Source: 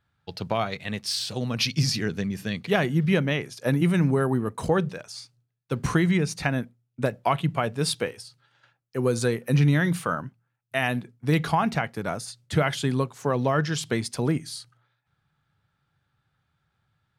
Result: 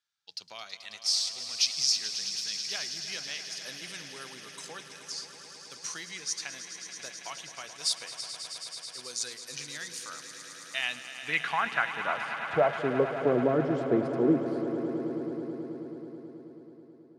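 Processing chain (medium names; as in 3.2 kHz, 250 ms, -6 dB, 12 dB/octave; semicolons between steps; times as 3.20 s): band-pass sweep 5.9 kHz -> 360 Hz, 10.32–13.26 s; echo with a slow build-up 108 ms, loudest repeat 5, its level -13 dB; trim +5 dB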